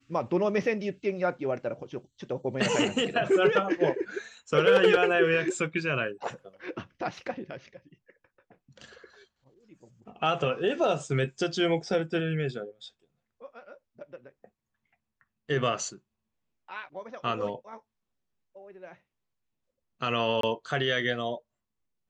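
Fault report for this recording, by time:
20.41–20.43 gap 23 ms

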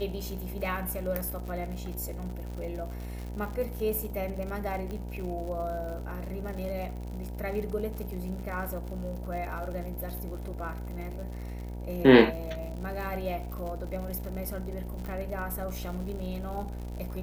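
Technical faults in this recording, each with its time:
buzz 60 Hz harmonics 16 -37 dBFS
crackle 90/s -37 dBFS
4.91 pop -25 dBFS
15.06 pop

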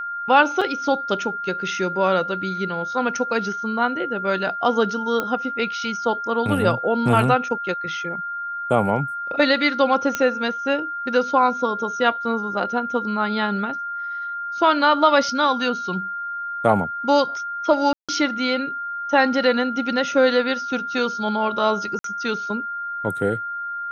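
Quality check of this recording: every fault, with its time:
tone 1400 Hz -26 dBFS
0.61–0.62 gap 5.3 ms
5.2 pop -10 dBFS
10.15 pop -8 dBFS
17.93–18.09 gap 0.156 s
21.99–22.04 gap 53 ms

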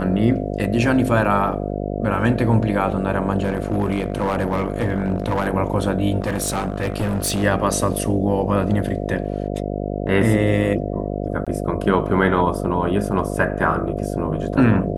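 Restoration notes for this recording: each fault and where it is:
buzz 50 Hz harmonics 14 -25 dBFS
1.25 gap 2.2 ms
3.42–5.48 clipped -15 dBFS
6.2–7.44 clipped -17.5 dBFS
11.45–11.47 gap 16 ms

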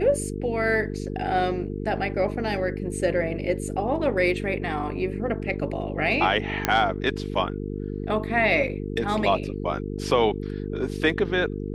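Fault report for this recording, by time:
buzz 50 Hz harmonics 9 -31 dBFS
6.65 pop -5 dBFS

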